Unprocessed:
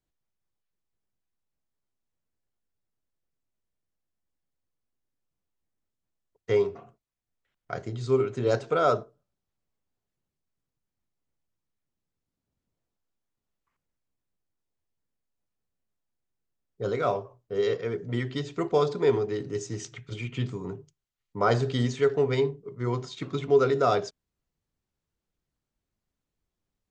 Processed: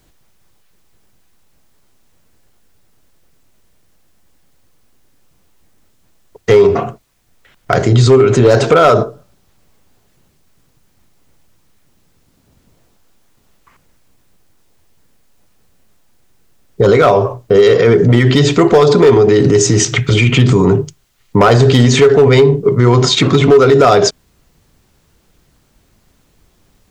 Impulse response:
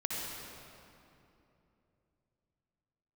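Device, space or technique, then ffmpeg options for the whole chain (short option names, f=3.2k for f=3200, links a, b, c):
loud club master: -af "acompressor=threshold=-26dB:ratio=3,asoftclip=type=hard:threshold=-23dB,alimiter=level_in=31.5dB:limit=-1dB:release=50:level=0:latency=1,volume=-1dB"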